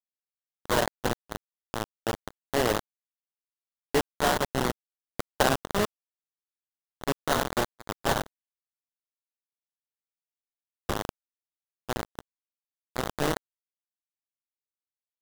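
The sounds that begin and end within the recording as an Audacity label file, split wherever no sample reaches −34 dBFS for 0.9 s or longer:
3.950000	5.850000	sound
7.040000	8.260000	sound
10.890000	13.370000	sound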